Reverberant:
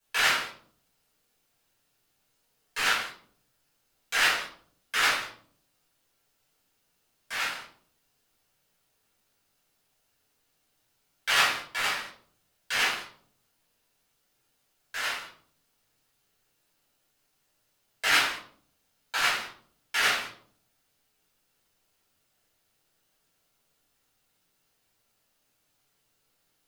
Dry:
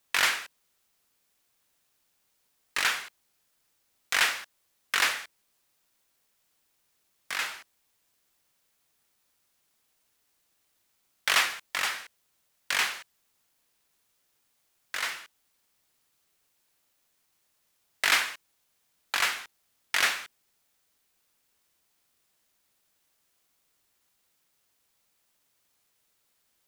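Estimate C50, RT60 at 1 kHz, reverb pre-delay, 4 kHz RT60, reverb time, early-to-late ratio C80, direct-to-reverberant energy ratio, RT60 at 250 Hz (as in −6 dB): 5.0 dB, 0.45 s, 4 ms, 0.35 s, 0.55 s, 9.5 dB, −10.5 dB, 0.85 s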